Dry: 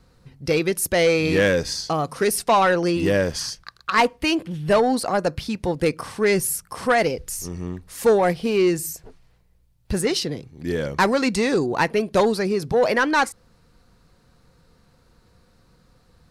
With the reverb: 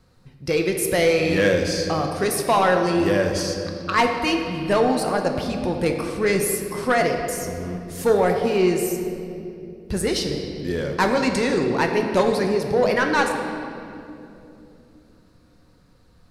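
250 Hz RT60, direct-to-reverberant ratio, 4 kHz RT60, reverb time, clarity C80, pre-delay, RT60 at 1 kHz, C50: 4.3 s, 3.0 dB, 1.9 s, 2.8 s, 6.0 dB, 5 ms, 2.3 s, 5.0 dB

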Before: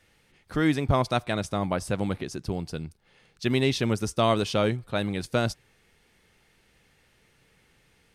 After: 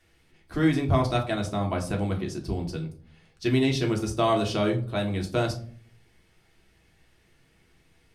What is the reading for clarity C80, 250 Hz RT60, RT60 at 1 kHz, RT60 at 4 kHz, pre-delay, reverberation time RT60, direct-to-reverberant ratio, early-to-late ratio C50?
15.5 dB, 0.70 s, 0.40 s, 0.30 s, 3 ms, 0.45 s, 0.5 dB, 12.0 dB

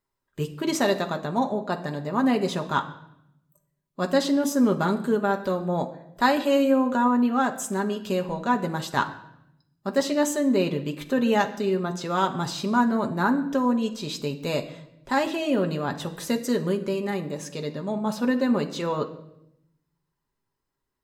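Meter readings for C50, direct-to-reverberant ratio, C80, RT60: 12.5 dB, 3.0 dB, 15.5 dB, 0.80 s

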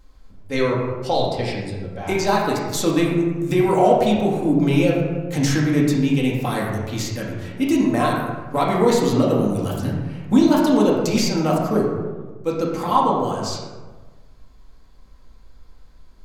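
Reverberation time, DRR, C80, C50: 1.3 s, -4.0 dB, 3.5 dB, 1.5 dB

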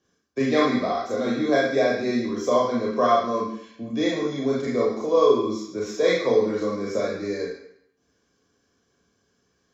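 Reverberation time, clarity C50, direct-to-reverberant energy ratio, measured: 0.70 s, 1.5 dB, -4.0 dB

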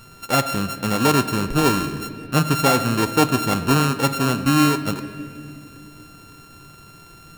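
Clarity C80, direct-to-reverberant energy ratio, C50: 12.5 dB, 9.5 dB, 11.5 dB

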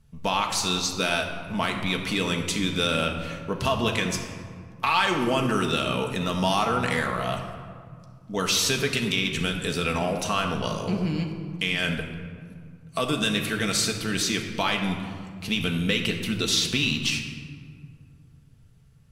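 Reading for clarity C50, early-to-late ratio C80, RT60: 6.0 dB, 7.5 dB, 2.0 s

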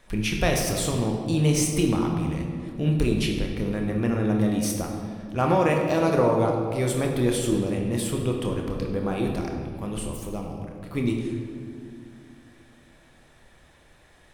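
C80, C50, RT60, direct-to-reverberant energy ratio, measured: 5.0 dB, 3.0 dB, 2.2 s, 1.0 dB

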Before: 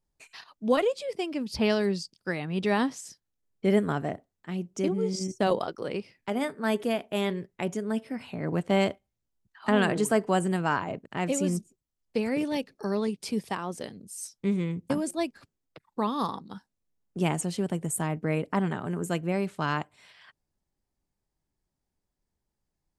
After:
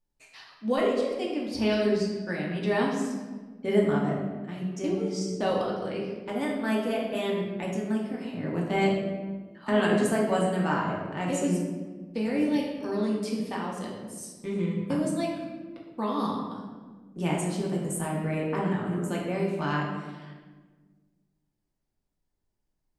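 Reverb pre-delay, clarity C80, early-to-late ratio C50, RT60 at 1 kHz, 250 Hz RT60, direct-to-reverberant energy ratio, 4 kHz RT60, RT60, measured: 3 ms, 4.5 dB, 2.0 dB, 1.3 s, 2.2 s, -3.5 dB, 0.90 s, 1.5 s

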